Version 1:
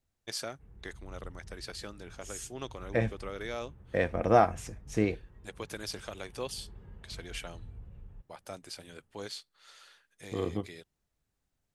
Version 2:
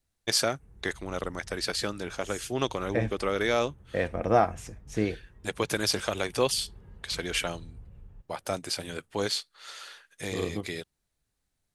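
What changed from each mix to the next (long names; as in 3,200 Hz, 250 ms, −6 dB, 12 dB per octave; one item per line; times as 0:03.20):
first voice +12.0 dB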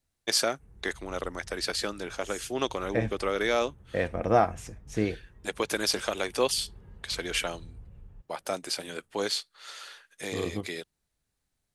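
first voice: add high-pass filter 220 Hz 12 dB per octave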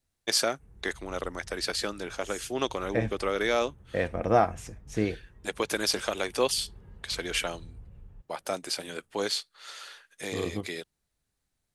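nothing changed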